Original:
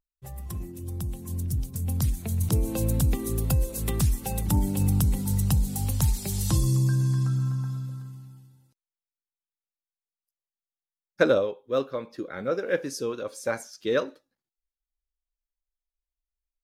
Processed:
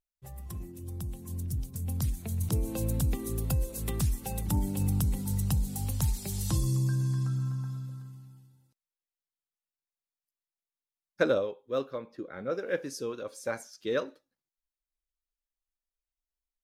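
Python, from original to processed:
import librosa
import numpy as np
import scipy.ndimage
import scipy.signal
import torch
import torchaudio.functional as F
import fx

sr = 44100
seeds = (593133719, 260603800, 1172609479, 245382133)

y = fx.high_shelf(x, sr, hz=3300.0, db=-9.5, at=(11.98, 12.5))
y = y * librosa.db_to_amplitude(-5.0)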